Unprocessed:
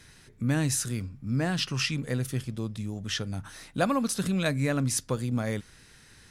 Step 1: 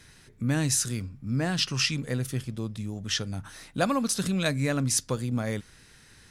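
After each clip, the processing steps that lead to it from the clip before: dynamic EQ 5700 Hz, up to +5 dB, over -42 dBFS, Q 0.75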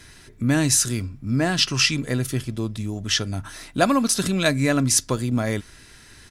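comb 3 ms, depth 33%; gain +6.5 dB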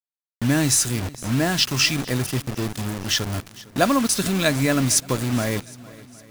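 bit-crush 5-bit; swung echo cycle 0.762 s, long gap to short 1.5:1, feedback 33%, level -20.5 dB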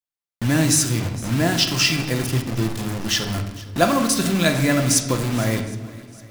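reverb RT60 1.1 s, pre-delay 6 ms, DRR 4 dB

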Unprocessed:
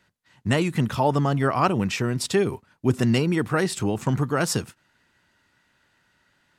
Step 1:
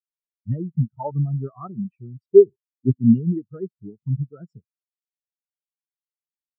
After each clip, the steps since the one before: spectral expander 4:1; gain +6 dB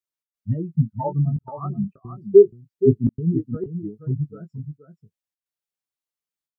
step gate "xx.xxxxxxxxx.xx" 132 bpm -60 dB; doubler 19 ms -8.5 dB; echo 0.476 s -9 dB; gain +1.5 dB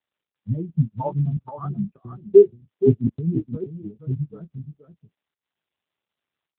AMR-NB 7.95 kbps 8000 Hz

